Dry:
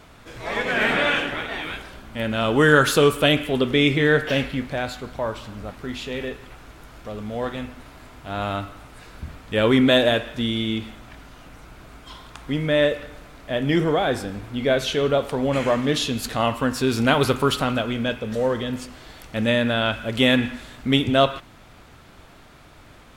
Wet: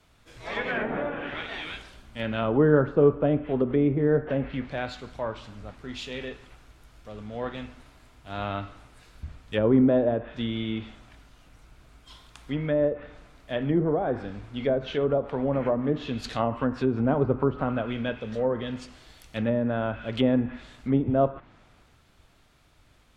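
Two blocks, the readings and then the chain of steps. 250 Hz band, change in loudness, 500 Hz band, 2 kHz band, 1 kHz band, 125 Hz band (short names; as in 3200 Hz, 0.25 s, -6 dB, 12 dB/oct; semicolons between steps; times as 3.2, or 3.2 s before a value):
-3.0 dB, -5.0 dB, -4.0 dB, -12.5 dB, -7.5 dB, -3.0 dB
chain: treble ducked by the level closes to 690 Hz, closed at -16 dBFS; three-band expander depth 40%; gain -3.5 dB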